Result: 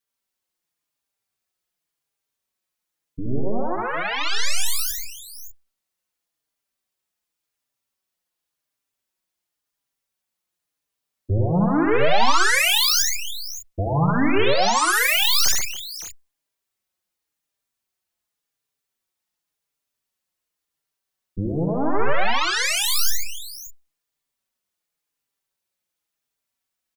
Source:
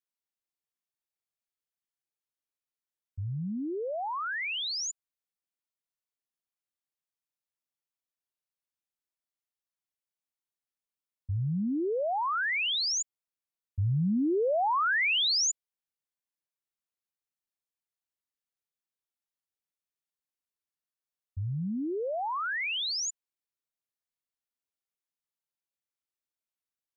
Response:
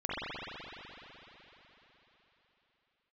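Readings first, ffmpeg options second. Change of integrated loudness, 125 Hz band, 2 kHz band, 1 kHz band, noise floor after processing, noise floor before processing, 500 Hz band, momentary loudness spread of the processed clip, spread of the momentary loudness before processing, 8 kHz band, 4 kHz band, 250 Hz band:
+9.0 dB, +7.0 dB, +9.0 dB, +9.0 dB, -83 dBFS, under -85 dBFS, +8.5 dB, 16 LU, 13 LU, no reading, +9.0 dB, +8.0 dB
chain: -filter_complex "[0:a]aeval=exprs='0.0708*(cos(1*acos(clip(val(0)/0.0708,-1,1)))-cos(1*PI/2))+0.02*(cos(6*acos(clip(val(0)/0.0708,-1,1)))-cos(6*PI/2))+0.0251*(cos(7*acos(clip(val(0)/0.0708,-1,1)))-cos(7*PI/2))':c=same,aecho=1:1:73|133|284|568|599:0.668|0.531|0.158|0.211|0.126,asplit=2[s0][s1];[s1]adelay=4.6,afreqshift=-0.91[s2];[s0][s2]amix=inputs=2:normalize=1,volume=2.51"

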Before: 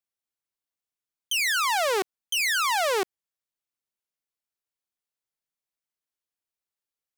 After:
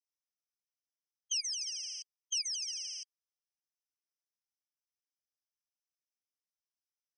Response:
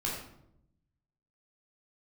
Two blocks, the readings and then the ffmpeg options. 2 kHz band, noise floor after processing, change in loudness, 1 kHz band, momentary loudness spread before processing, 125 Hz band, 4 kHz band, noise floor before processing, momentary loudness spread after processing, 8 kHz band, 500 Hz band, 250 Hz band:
-28.5 dB, under -85 dBFS, -11.5 dB, under -40 dB, 6 LU, no reading, -8.5 dB, under -85 dBFS, 12 LU, -4.5 dB, under -40 dB, under -40 dB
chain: -af "asuperpass=centerf=5100:order=8:qfactor=1.4,afftfilt=real='re*eq(mod(floor(b*sr/1024/1600),2),1)':imag='im*eq(mod(floor(b*sr/1024/1600),2),1)':win_size=1024:overlap=0.75"

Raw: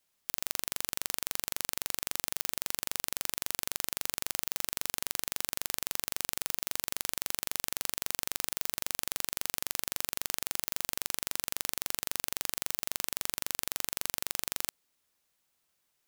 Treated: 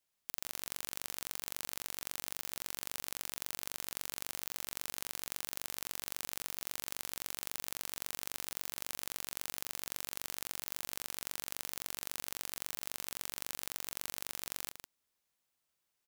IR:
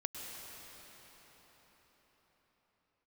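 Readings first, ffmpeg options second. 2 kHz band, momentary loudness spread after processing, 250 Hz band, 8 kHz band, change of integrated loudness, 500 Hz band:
-6.5 dB, 0 LU, -6.0 dB, -6.5 dB, -6.5 dB, -6.0 dB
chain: -filter_complex "[0:a]asplit=2[s0][s1];[s1]adelay=151.6,volume=0.447,highshelf=f=4000:g=-3.41[s2];[s0][s2]amix=inputs=2:normalize=0,volume=0.447"

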